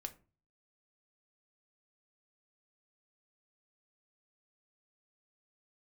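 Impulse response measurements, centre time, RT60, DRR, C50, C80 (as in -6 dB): 6 ms, 0.35 s, 6.0 dB, 16.5 dB, 22.5 dB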